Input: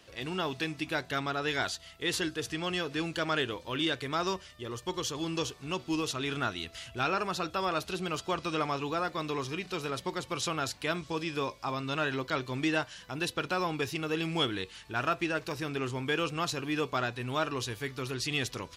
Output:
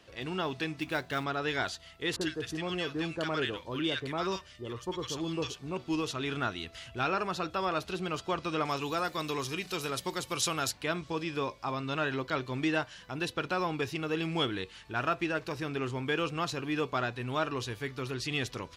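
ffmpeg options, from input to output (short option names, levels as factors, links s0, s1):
-filter_complex "[0:a]asplit=3[s0][s1][s2];[s0]afade=t=out:st=0.79:d=0.02[s3];[s1]acrusher=bits=4:mode=log:mix=0:aa=0.000001,afade=t=in:st=0.79:d=0.02,afade=t=out:st=1.23:d=0.02[s4];[s2]afade=t=in:st=1.23:d=0.02[s5];[s3][s4][s5]amix=inputs=3:normalize=0,asettb=1/sr,asplit=3[s6][s7][s8];[s6]atrim=end=2.164[s9];[s7]atrim=start=2.16:end=5.77,asetpts=PTS-STARTPTS,afade=t=in:d=0.004:c=qsin,afade=t=out:st=3.606:d=0.004:c=qsin,acrossover=split=1200[s10][s11];[s11]adelay=50[s12];[s10][s12]amix=inputs=2:normalize=0,atrim=end_sample=159201[s13];[s8]atrim=start=5.766[s14];[s9][s13]acrossfade=d=0.004:c1=hsin:c2=qsin[s15];[s15][s14]acrossfade=d=0.004:c1=qsin:c2=hsin,asettb=1/sr,asplit=3[s16][s17][s18];[s16]atrim=end=8.654[s19];[s17]atrim=start=8.65:end=10.71,asetpts=PTS-STARTPTS,afade=t=in:d=0.004:c=qsin,afade=t=out:st=2.056:d=0.004:c=qsin,aemphasis=mode=production:type=75fm[s20];[s18]atrim=start=10.706[s21];[s19][s20]acrossfade=d=0.004:c1=hsin:c2=qsin[s22];[s22][s21]acrossfade=d=0.004:c1=qsin:c2=hsin,highshelf=f=5100:g=-7.5"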